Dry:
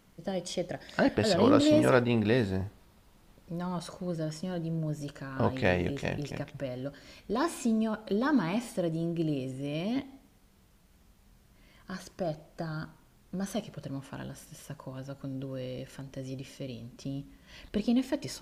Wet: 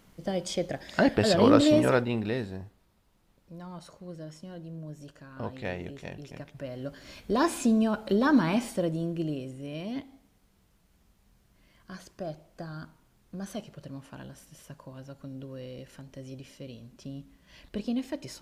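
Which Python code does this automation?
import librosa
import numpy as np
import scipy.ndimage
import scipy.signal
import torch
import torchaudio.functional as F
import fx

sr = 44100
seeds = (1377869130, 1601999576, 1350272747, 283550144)

y = fx.gain(x, sr, db=fx.line((1.61, 3.0), (2.63, -8.0), (6.22, -8.0), (7.16, 4.5), (8.55, 4.5), (9.57, -3.5)))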